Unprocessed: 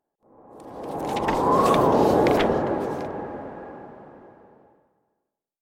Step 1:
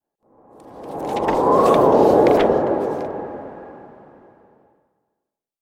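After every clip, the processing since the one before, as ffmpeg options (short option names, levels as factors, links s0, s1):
-af "adynamicequalizer=threshold=0.0224:dfrequency=510:dqfactor=0.73:tfrequency=510:tqfactor=0.73:attack=5:release=100:ratio=0.375:range=4:mode=boostabove:tftype=bell,volume=0.891"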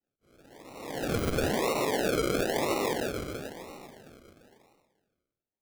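-af "acompressor=threshold=0.158:ratio=6,alimiter=limit=0.211:level=0:latency=1:release=122,acrusher=samples=38:mix=1:aa=0.000001:lfo=1:lforange=22.8:lforate=1,volume=0.501"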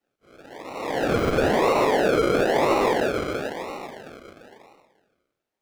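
-filter_complex "[0:a]asplit=2[s0][s1];[s1]highpass=f=720:p=1,volume=3.98,asoftclip=type=tanh:threshold=0.106[s2];[s0][s2]amix=inputs=2:normalize=0,lowpass=f=1900:p=1,volume=0.501,volume=2.66"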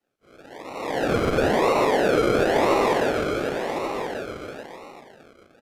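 -filter_complex "[0:a]aresample=32000,aresample=44100,asplit=2[s0][s1];[s1]aecho=0:1:1136:0.398[s2];[s0][s2]amix=inputs=2:normalize=0"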